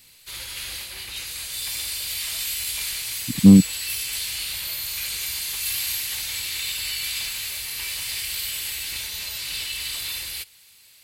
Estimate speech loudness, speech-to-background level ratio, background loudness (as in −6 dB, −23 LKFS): −15.0 LKFS, 12.0 dB, −27.0 LKFS